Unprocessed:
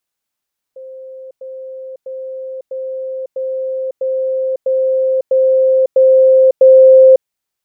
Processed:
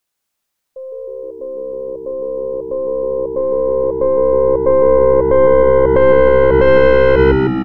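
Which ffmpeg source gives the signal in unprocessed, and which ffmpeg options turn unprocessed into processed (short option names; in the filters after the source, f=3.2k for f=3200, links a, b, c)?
-f lavfi -i "aevalsrc='pow(10,(-29+3*floor(t/0.65))/20)*sin(2*PI*524*t)*clip(min(mod(t,0.65),0.55-mod(t,0.65))/0.005,0,1)':d=6.5:s=44100"
-filter_complex "[0:a]aeval=exprs='(tanh(3.55*val(0)+0.6)-tanh(0.6))/3.55':c=same,asplit=2[a][b];[b]asplit=8[c][d][e][f][g][h][i][j];[c]adelay=156,afreqshift=-67,volume=-5dB[k];[d]adelay=312,afreqshift=-134,volume=-9.4dB[l];[e]adelay=468,afreqshift=-201,volume=-13.9dB[m];[f]adelay=624,afreqshift=-268,volume=-18.3dB[n];[g]adelay=780,afreqshift=-335,volume=-22.7dB[o];[h]adelay=936,afreqshift=-402,volume=-27.2dB[p];[i]adelay=1092,afreqshift=-469,volume=-31.6dB[q];[j]adelay=1248,afreqshift=-536,volume=-36.1dB[r];[k][l][m][n][o][p][q][r]amix=inputs=8:normalize=0[s];[a][s]amix=inputs=2:normalize=0,alimiter=level_in=6.5dB:limit=-1dB:release=50:level=0:latency=1"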